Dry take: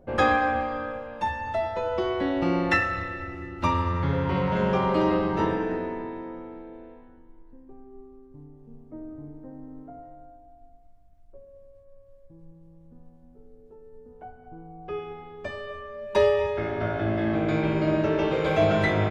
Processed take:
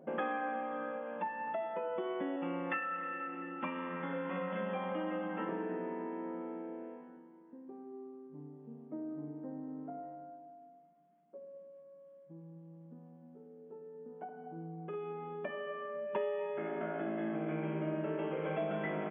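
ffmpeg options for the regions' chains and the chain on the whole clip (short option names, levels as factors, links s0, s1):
-filter_complex "[0:a]asettb=1/sr,asplit=3[s0][s1][s2];[s0]atrim=end=2.364[s3];[s1]atrim=start=2.36:end=5.49,asetpts=PTS-STARTPTS,afade=t=in:d=0.004:c=qsin,afade=t=out:st=3.126:d=0.004:c=qsin,lowpass=3500,equalizer=f=280:t=o:w=2.9:g=-7.5,aecho=1:1:3.8:0.91,atrim=end_sample=138033[s4];[s2]atrim=start=5.486[s5];[s3][s4]acrossfade=d=0.004:c1=hsin:c2=qsin[s6];[s6][s5]acrossfade=d=0.004:c1=qsin:c2=hsin,asettb=1/sr,asplit=3[s7][s8][s9];[s7]atrim=end=14.244[s10];[s8]atrim=start=14.24:end=15.44,asetpts=PTS-STARTPTS,afade=t=in:d=0.004:c=qsin,afade=t=out:st=1.196:d=0.004:c=qsin,highshelf=f=3700:g=-5,acompressor=threshold=0.00794:ratio=2:attack=3.2:release=140:knee=1:detection=peak,asplit=2[s11][s12];[s12]adelay=48,volume=0.596[s13];[s11][s13]amix=inputs=2:normalize=0,atrim=end_sample=52920[s14];[s9]atrim=start=15.436[s15];[s10][s14]acrossfade=d=0.004:c1=hsin:c2=qsin[s16];[s16][s15]acrossfade=d=0.004:c1=qsin:c2=hsin,aemphasis=mode=reproduction:type=75kf,afftfilt=real='re*between(b*sr/4096,150,3500)':imag='im*between(b*sr/4096,150,3500)':win_size=4096:overlap=0.75,acompressor=threshold=0.0126:ratio=3"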